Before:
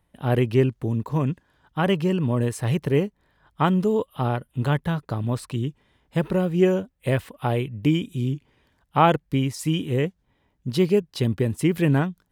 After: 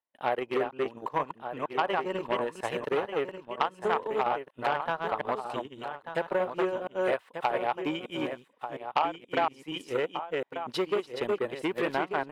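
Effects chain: chunks repeated in reverse 237 ms, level -3 dB; low-pass 2.1 kHz 6 dB/octave; gate -46 dBFS, range -20 dB; high-pass 590 Hz 12 dB/octave; dynamic bell 870 Hz, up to +6 dB, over -38 dBFS, Q 0.88; transient shaper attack +3 dB, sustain -11 dB; compression 12:1, threshold -23 dBFS, peak gain reduction 17 dB; on a send: delay 1189 ms -10.5 dB; on the sum: transformer saturation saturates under 1.5 kHz; trim +1.5 dB

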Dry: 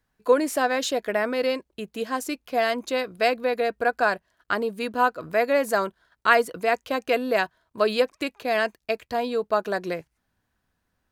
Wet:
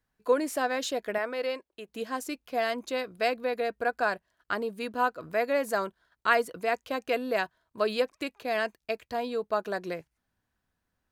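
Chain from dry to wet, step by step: 1.18–1.89 s: tone controls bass -15 dB, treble -4 dB; trim -5.5 dB

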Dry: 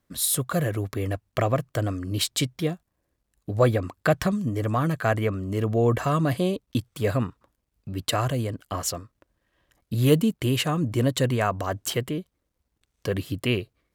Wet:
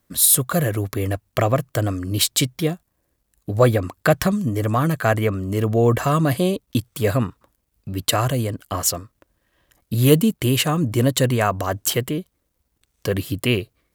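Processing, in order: treble shelf 8.9 kHz +9.5 dB; trim +4.5 dB

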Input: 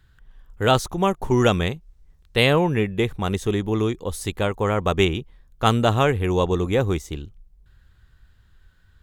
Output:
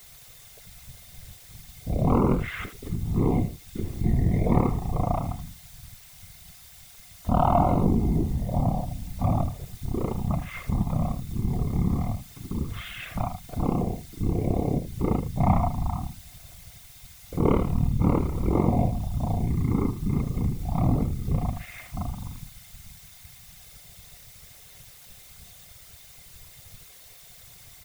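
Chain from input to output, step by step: wide varispeed 0.324×; distance through air 380 m; on a send: delay 78 ms -11.5 dB; on the sum: added noise blue -44 dBFS; whisper effect; in parallel at -1 dB: compression, threshold -27 dBFS, peak gain reduction 16 dB; on the sum: treble shelf 7.4 kHz -7 dB; small resonant body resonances 720/2100/3600 Hz, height 10 dB; trim -6 dB

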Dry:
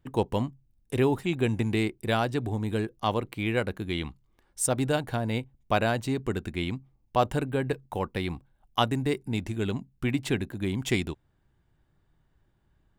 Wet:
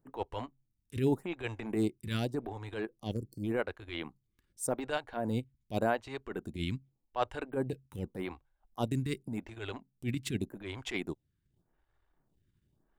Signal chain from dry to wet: spectral selection erased 3.13–3.44 s, 700–4300 Hz; transient shaper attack -12 dB, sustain -8 dB; lamp-driven phase shifter 0.86 Hz

